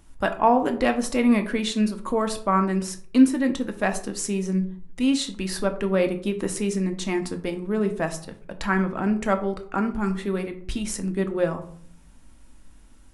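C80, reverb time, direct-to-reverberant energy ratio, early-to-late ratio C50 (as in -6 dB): 16.5 dB, 0.55 s, 6.0 dB, 13.0 dB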